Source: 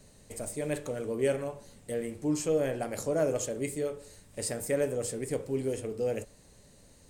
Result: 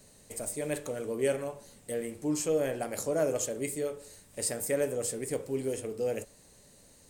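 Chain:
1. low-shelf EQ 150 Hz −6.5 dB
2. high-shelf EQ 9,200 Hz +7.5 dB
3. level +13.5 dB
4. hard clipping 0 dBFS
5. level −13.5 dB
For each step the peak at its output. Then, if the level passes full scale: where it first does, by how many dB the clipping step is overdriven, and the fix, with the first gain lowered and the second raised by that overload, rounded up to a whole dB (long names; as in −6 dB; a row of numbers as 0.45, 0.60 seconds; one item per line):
−17.0, −15.5, −2.0, −2.0, −15.5 dBFS
no step passes full scale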